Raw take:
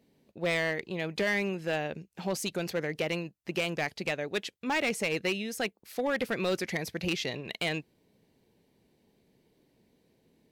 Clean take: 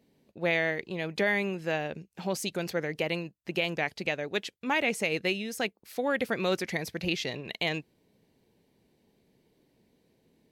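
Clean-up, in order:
clipped peaks rebuilt −23 dBFS

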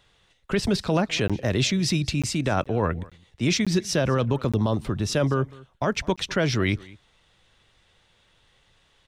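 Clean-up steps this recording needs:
repair the gap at 0:01.28/0:02.22/0:02.64/0:03.10/0:03.65/0:04.52/0:06.16, 16 ms
echo removal 205 ms −22.5 dB

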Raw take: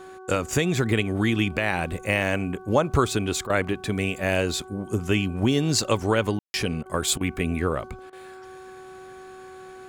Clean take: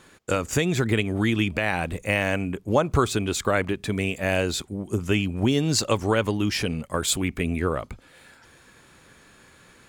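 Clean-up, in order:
hum removal 375.1 Hz, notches 4
ambience match 0:06.39–0:06.54
repair the gap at 0:03.47/0:06.43/0:06.83/0:07.18/0:08.10, 26 ms

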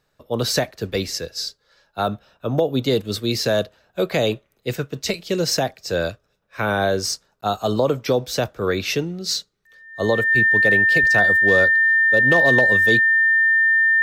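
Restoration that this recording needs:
clipped peaks rebuilt −7.5 dBFS
notch filter 1,800 Hz, Q 30
repair the gap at 0:07.41, 14 ms

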